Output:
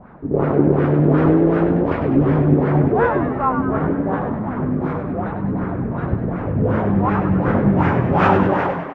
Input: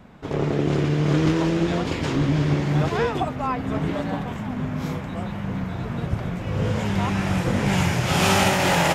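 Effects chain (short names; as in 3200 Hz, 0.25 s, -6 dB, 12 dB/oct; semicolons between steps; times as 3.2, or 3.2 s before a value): ending faded out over 0.58 s; LFO low-pass sine 2.7 Hz 260–1500 Hz; frequency-shifting echo 99 ms, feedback 53%, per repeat +110 Hz, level -8 dB; gain +3 dB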